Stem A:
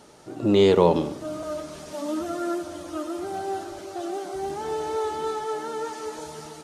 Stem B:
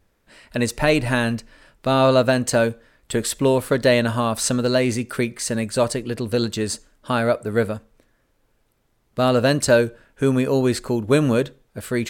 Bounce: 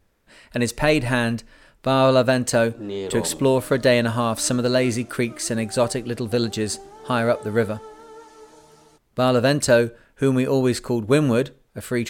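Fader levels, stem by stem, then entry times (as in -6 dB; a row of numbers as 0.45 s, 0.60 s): -12.0 dB, -0.5 dB; 2.35 s, 0.00 s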